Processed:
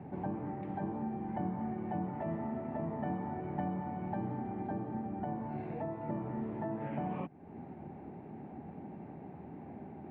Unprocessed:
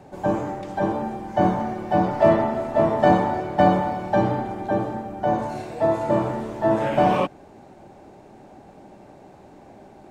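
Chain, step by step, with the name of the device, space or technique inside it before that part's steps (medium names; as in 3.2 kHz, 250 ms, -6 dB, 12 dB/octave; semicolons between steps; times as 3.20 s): bass amplifier (compression 4:1, threshold -35 dBFS, peak gain reduction 19.5 dB; cabinet simulation 67–2200 Hz, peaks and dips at 85 Hz +6 dB, 160 Hz +9 dB, 240 Hz +6 dB, 580 Hz -8 dB, 1.1 kHz -5 dB, 1.5 kHz -6 dB); trim -2 dB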